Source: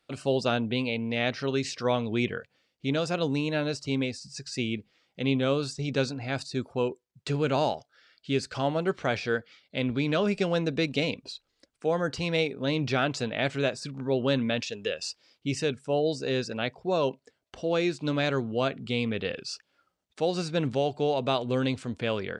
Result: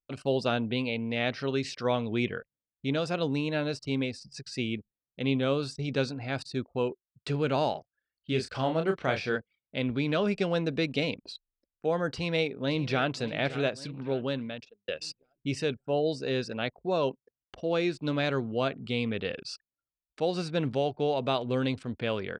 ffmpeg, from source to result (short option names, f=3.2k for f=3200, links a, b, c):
-filter_complex "[0:a]asettb=1/sr,asplit=3[a][b][c];[a]atrim=end=7.724[d];[b]atrim=start=7.72:end=9.36,asetpts=PTS-STARTPTS,afade=t=in:d=0.004:c=qsin,afade=t=out:st=1.636:d=0.004:c=qsin,asplit=2[e][f];[f]adelay=31,volume=-6dB[g];[e][g]amix=inputs=2:normalize=0,atrim=end_sample=72324[h];[c]atrim=start=9.356[i];[d][h]acrossfade=d=0.004:c1=hsin:c2=qsin[j];[j][i]acrossfade=d=0.004:c1=qsin:c2=hsin,asplit=2[k][l];[l]afade=t=in:st=12.13:d=0.01,afade=t=out:st=13.13:d=0.01,aecho=0:1:570|1140|1710|2280|2850:0.188365|0.103601|0.0569804|0.0313392|0.0172366[m];[k][m]amix=inputs=2:normalize=0,asplit=2[n][o];[n]atrim=end=14.88,asetpts=PTS-STARTPTS,afade=t=out:st=13.92:d=0.96[p];[o]atrim=start=14.88,asetpts=PTS-STARTPTS,afade=t=in:d=0.004:c=hsin[q];[p][q]concat=n=2:v=0:a=1,anlmdn=0.0398,equalizer=f=7k:t=o:w=0.51:g=-7,volume=-1.5dB"